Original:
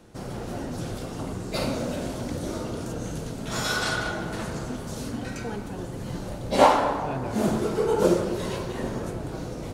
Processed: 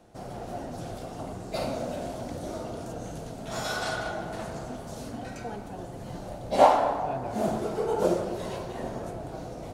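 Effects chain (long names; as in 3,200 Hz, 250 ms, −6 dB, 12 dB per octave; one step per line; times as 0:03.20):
parametric band 700 Hz +10.5 dB 0.54 octaves
level −6.5 dB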